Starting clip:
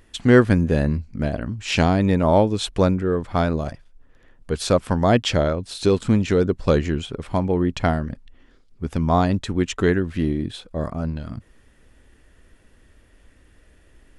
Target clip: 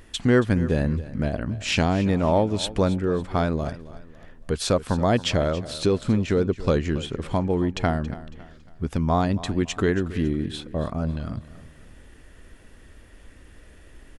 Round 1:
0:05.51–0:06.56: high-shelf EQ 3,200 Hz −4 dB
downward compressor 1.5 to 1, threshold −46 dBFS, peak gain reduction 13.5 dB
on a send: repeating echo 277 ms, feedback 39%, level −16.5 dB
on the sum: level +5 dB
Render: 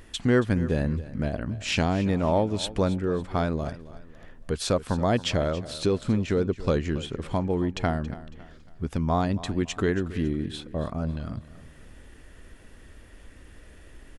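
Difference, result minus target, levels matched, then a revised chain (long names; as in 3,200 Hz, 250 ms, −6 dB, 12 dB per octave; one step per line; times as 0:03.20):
downward compressor: peak gain reduction +3 dB
0:05.51–0:06.56: high-shelf EQ 3,200 Hz −4 dB
downward compressor 1.5 to 1, threshold −37.5 dBFS, peak gain reduction 10.5 dB
on a send: repeating echo 277 ms, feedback 39%, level −16.5 dB
on the sum: level +5 dB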